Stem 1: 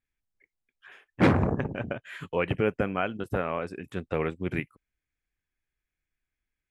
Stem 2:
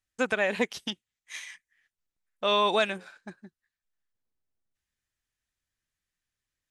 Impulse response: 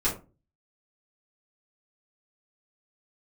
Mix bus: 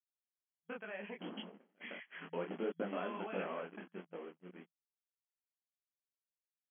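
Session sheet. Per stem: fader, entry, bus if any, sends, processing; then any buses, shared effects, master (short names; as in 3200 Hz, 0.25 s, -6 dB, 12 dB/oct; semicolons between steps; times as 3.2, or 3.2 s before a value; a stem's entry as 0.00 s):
1.74 s -13 dB -> 2.2 s -1 dB -> 3.45 s -1 dB -> 4.22 s -9.5 dB, 0.00 s, no send, treble ducked by the level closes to 1200 Hz, closed at -24.5 dBFS; compressor 1.5:1, threshold -41 dBFS, peak gain reduction 9 dB; bit-crush 7-bit
-1.0 dB, 0.50 s, no send, limiter -19.5 dBFS, peak gain reduction 8.5 dB; compressor 3:1, threshold -40 dBFS, peak gain reduction 11 dB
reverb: off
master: gate -44 dBFS, range -20 dB; FFT band-pass 170–3300 Hz; detuned doubles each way 50 cents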